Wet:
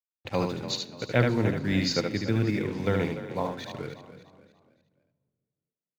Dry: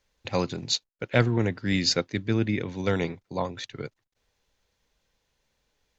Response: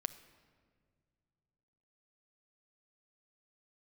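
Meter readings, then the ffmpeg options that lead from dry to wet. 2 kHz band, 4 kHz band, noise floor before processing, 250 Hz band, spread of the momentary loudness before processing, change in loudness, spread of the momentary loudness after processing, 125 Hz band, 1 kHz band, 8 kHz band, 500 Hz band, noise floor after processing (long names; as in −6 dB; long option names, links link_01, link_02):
−1.0 dB, −4.5 dB, −78 dBFS, 0.0 dB, 11 LU, −1.0 dB, 12 LU, 0.0 dB, 0.0 dB, can't be measured, 0.0 dB, below −85 dBFS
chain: -filter_complex "[0:a]acrusher=bits=6:mix=0:aa=0.5,highshelf=frequency=4800:gain=-10,asplit=5[link_01][link_02][link_03][link_04][link_05];[link_02]adelay=292,afreqshift=34,volume=-13dB[link_06];[link_03]adelay=584,afreqshift=68,volume=-21.4dB[link_07];[link_04]adelay=876,afreqshift=102,volume=-29.8dB[link_08];[link_05]adelay=1168,afreqshift=136,volume=-38.2dB[link_09];[link_01][link_06][link_07][link_08][link_09]amix=inputs=5:normalize=0,asplit=2[link_10][link_11];[1:a]atrim=start_sample=2205,adelay=73[link_12];[link_11][link_12]afir=irnorm=-1:irlink=0,volume=-3.5dB[link_13];[link_10][link_13]amix=inputs=2:normalize=0,volume=-1.5dB"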